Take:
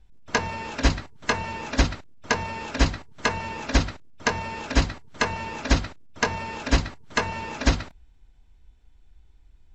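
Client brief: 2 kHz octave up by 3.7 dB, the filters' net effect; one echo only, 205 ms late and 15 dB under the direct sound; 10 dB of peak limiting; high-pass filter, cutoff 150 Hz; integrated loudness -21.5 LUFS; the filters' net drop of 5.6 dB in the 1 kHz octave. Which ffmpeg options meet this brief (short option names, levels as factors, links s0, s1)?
-af "highpass=150,equalizer=f=1000:t=o:g=-8.5,equalizer=f=2000:t=o:g=7.5,alimiter=limit=0.178:level=0:latency=1,aecho=1:1:205:0.178,volume=2.82"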